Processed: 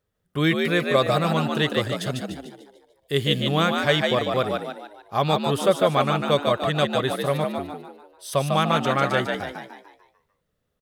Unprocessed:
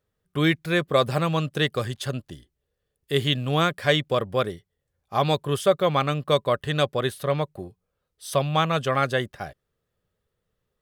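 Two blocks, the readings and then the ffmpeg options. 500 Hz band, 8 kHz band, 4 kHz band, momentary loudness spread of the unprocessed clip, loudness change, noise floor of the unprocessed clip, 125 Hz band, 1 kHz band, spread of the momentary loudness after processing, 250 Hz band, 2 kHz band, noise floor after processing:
+1.5 dB, +2.0 dB, +2.0 dB, 12 LU, +1.5 dB, −80 dBFS, 0.0 dB, +2.5 dB, 14 LU, +3.0 dB, +2.0 dB, −75 dBFS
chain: -filter_complex "[0:a]asplit=7[link_01][link_02][link_03][link_04][link_05][link_06][link_07];[link_02]adelay=148,afreqshift=67,volume=-4dB[link_08];[link_03]adelay=296,afreqshift=134,volume=-11.1dB[link_09];[link_04]adelay=444,afreqshift=201,volume=-18.3dB[link_10];[link_05]adelay=592,afreqshift=268,volume=-25.4dB[link_11];[link_06]adelay=740,afreqshift=335,volume=-32.5dB[link_12];[link_07]adelay=888,afreqshift=402,volume=-39.7dB[link_13];[link_01][link_08][link_09][link_10][link_11][link_12][link_13]amix=inputs=7:normalize=0"

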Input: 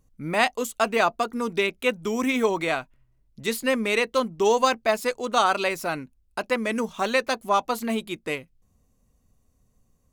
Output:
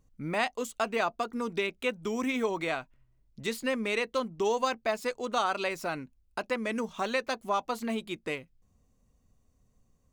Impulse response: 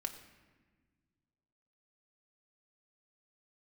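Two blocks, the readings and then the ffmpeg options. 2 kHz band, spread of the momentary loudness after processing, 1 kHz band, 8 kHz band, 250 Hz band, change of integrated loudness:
−7.0 dB, 7 LU, −7.5 dB, −8.5 dB, −6.0 dB, −7.0 dB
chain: -af "equalizer=frequency=12000:width=1.3:gain=-8.5,acompressor=threshold=-31dB:ratio=1.5,volume=-2.5dB"

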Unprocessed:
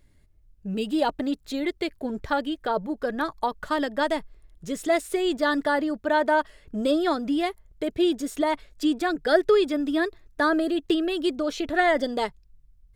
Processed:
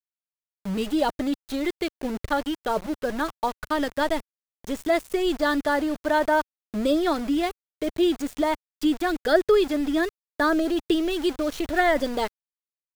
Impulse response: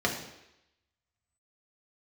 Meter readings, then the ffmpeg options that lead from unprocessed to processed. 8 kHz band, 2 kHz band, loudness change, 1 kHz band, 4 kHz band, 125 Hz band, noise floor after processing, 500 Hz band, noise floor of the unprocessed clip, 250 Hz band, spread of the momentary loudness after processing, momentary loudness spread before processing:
+1.0 dB, 0.0 dB, +0.5 dB, 0.0 dB, +0.5 dB, can't be measured, below −85 dBFS, +0.5 dB, −58 dBFS, +1.0 dB, 9 LU, 9 LU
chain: -af "aeval=exprs='val(0)*gte(abs(val(0)),0.0211)':channel_layout=same,lowshelf=frequency=96:gain=10.5"

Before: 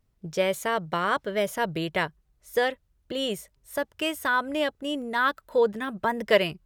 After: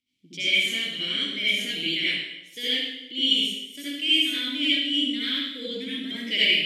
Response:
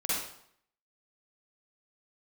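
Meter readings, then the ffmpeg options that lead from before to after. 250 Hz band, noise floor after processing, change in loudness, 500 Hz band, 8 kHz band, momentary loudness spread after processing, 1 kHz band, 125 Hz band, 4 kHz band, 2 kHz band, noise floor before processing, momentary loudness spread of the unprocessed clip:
+1.5 dB, −50 dBFS, +3.5 dB, −14.0 dB, +1.0 dB, 11 LU, below −20 dB, can't be measured, +14.0 dB, +2.0 dB, −70 dBFS, 8 LU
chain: -filter_complex "[1:a]atrim=start_sample=2205,asetrate=29988,aresample=44100[link_01];[0:a][link_01]afir=irnorm=-1:irlink=0,aexciter=amount=6.1:drive=8.3:freq=2300,asplit=3[link_02][link_03][link_04];[link_02]bandpass=frequency=270:width_type=q:width=8,volume=0dB[link_05];[link_03]bandpass=frequency=2290:width_type=q:width=8,volume=-6dB[link_06];[link_04]bandpass=frequency=3010:width_type=q:width=8,volume=-9dB[link_07];[link_05][link_06][link_07]amix=inputs=3:normalize=0,volume=-2.5dB"

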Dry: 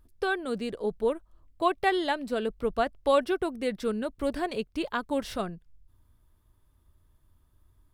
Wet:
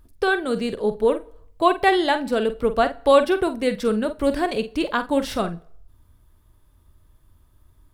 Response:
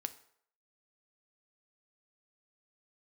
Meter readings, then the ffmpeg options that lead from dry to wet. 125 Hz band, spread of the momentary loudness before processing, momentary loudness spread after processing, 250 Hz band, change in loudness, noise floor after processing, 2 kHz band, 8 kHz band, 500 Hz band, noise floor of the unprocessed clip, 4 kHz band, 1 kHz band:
+8.0 dB, 8 LU, 8 LU, +8.0 dB, +8.0 dB, −58 dBFS, +8.0 dB, +8.0 dB, +8.0 dB, −66 dBFS, +8.0 dB, +8.0 dB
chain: -filter_complex "[0:a]asplit=2[link_01][link_02];[link_02]equalizer=frequency=600:width=7.3:gain=4.5[link_03];[1:a]atrim=start_sample=2205,adelay=47[link_04];[link_03][link_04]afir=irnorm=-1:irlink=0,volume=-9.5dB[link_05];[link_01][link_05]amix=inputs=2:normalize=0,volume=7.5dB"

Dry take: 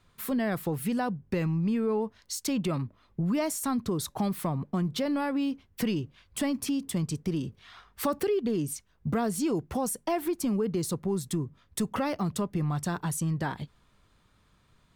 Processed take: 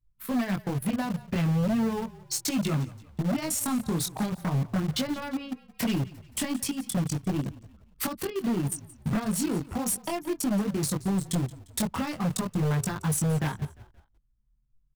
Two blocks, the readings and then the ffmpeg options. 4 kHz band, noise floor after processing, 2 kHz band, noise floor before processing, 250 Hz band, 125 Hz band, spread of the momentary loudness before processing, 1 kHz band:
+3.5 dB, −66 dBFS, +1.5 dB, −66 dBFS, +1.0 dB, +3.5 dB, 6 LU, −1.0 dB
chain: -filter_complex "[0:a]anlmdn=3.98,equalizer=frequency=450:width_type=o:width=1.3:gain=-7.5,acrossover=split=280|3000[link_01][link_02][link_03];[link_02]acompressor=threshold=-37dB:ratio=8[link_04];[link_01][link_04][link_03]amix=inputs=3:normalize=0,flanger=delay=19.5:depth=4:speed=0.38,asplit=2[link_05][link_06];[link_06]acrusher=bits=5:mix=0:aa=0.000001,volume=-10dB[link_07];[link_05][link_07]amix=inputs=2:normalize=0,aeval=exprs='0.0422*(abs(mod(val(0)/0.0422+3,4)-2)-1)':channel_layout=same,asplit=2[link_08][link_09];[link_09]asplit=3[link_10][link_11][link_12];[link_10]adelay=175,afreqshift=-35,volume=-19dB[link_13];[link_11]adelay=350,afreqshift=-70,volume=-26.1dB[link_14];[link_12]adelay=525,afreqshift=-105,volume=-33.3dB[link_15];[link_13][link_14][link_15]amix=inputs=3:normalize=0[link_16];[link_08][link_16]amix=inputs=2:normalize=0,volume=6.5dB"

